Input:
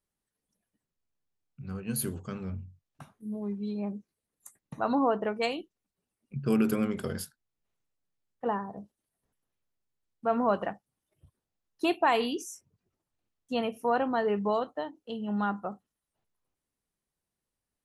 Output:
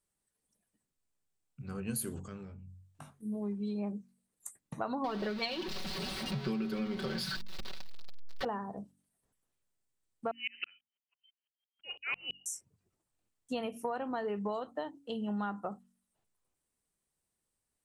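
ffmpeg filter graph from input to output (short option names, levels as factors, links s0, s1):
-filter_complex "[0:a]asettb=1/sr,asplit=3[s0][s1][s2];[s0]atrim=end=2.234[s3];[s1]atrim=start=2.23:end=3.1,asetpts=PTS-STARTPTS,afade=t=in:d=0.004:c=qsin,afade=t=out:st=0.866:d=0.004:c=qsin,asplit=2[s4][s5];[s5]adelay=20,volume=0.501[s6];[s4][s6]amix=inputs=2:normalize=0,atrim=end_sample=38367,acompressor=threshold=0.00631:ratio=3:attack=3.2:release=140:knee=1:detection=peak[s7];[s2]atrim=start=3.096[s8];[s3][s7]acrossfade=d=0.004:c1=hsin:c2=qsin[s9];[s9][s8]acrossfade=d=0.004:c1=qsin:c2=hsin,asettb=1/sr,asplit=3[s10][s11][s12];[s10]atrim=end=5.044[s13];[s11]atrim=start=5.04:end=8.45,asetpts=PTS-STARTPTS,afade=t=in:d=0.004:c=qsin,afade=t=out:st=3.406:d=0.004:c=qsin,aeval=exprs='val(0)+0.5*0.0237*sgn(val(0))':c=same,highshelf=f=6000:t=q:w=3:g=-12,aecho=1:1:5.3:0.77,atrim=end_sample=150381[s14];[s12]atrim=start=8.446[s15];[s13][s14]acrossfade=d=0.004:c1=hsin:c2=qsin[s16];[s16][s15]acrossfade=d=0.004:c1=qsin:c2=hsin,asettb=1/sr,asplit=3[s17][s18][s19];[s17]atrim=end=10.314[s20];[s18]atrim=start=10.31:end=12.46,asetpts=PTS-STARTPTS,afade=t=in:d=0.004:c=qsin,afade=t=out:st=2.146:d=0.004:c=qsin,lowpass=f=2700:t=q:w=0.5098,lowpass=f=2700:t=q:w=0.6013,lowpass=f=2700:t=q:w=0.9,lowpass=f=2700:t=q:w=2.563,afreqshift=-3200,aeval=exprs='val(0)*pow(10,-37*if(lt(mod(-6*n/s,1),2*abs(-6)/1000),1-mod(-6*n/s,1)/(2*abs(-6)/1000),(mod(-6*n/s,1)-2*abs(-6)/1000)/(1-2*abs(-6)/1000))/20)':c=same[s21];[s19]atrim=start=12.456[s22];[s20][s21]acrossfade=d=0.004:c1=hsin:c2=qsin[s23];[s23][s22]acrossfade=d=0.004:c1=qsin:c2=hsin,equalizer=f=8300:t=o:w=0.44:g=9,bandreject=f=46.87:t=h:w=4,bandreject=f=93.74:t=h:w=4,bandreject=f=140.61:t=h:w=4,bandreject=f=187.48:t=h:w=4,bandreject=f=234.35:t=h:w=4,bandreject=f=281.22:t=h:w=4,acompressor=threshold=0.0251:ratio=10"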